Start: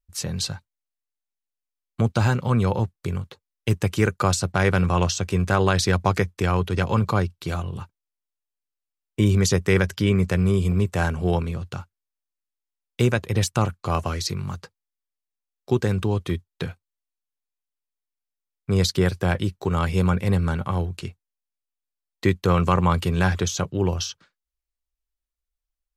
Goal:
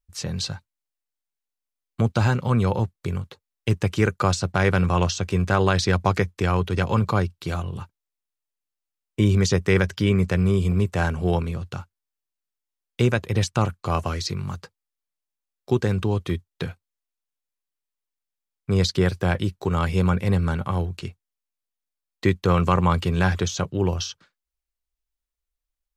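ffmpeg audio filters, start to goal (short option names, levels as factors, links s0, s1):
-filter_complex "[0:a]acrossover=split=7100[s0][s1];[s1]acompressor=threshold=0.00355:ratio=4:attack=1:release=60[s2];[s0][s2]amix=inputs=2:normalize=0"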